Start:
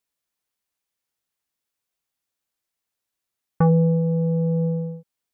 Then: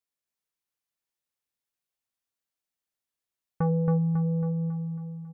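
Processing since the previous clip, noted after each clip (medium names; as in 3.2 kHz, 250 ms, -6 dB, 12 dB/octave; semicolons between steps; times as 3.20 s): feedback delay 274 ms, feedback 52%, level -4 dB; trim -8.5 dB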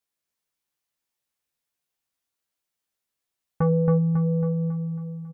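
doubling 14 ms -5 dB; trim +3.5 dB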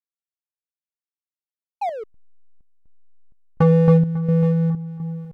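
painted sound fall, 1.81–2.04 s, 410–860 Hz -28 dBFS; hysteresis with a dead band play -32 dBFS; square tremolo 1.4 Hz, depth 60%, duty 65%; trim +7 dB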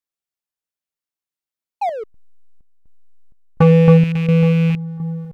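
rattle on loud lows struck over -22 dBFS, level -25 dBFS; trim +4 dB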